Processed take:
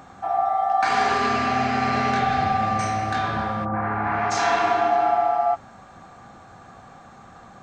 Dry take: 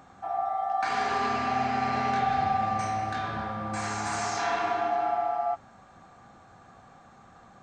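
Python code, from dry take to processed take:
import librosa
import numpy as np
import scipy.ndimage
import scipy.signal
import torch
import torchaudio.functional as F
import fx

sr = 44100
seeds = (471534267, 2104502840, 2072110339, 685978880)

y = fx.peak_eq(x, sr, hz=870.0, db=-9.5, octaves=0.29, at=(1.13, 3.11))
y = fx.lowpass(y, sr, hz=fx.line((3.64, 1400.0), (4.3, 2600.0)), slope=24, at=(3.64, 4.3), fade=0.02)
y = y * librosa.db_to_amplitude(7.5)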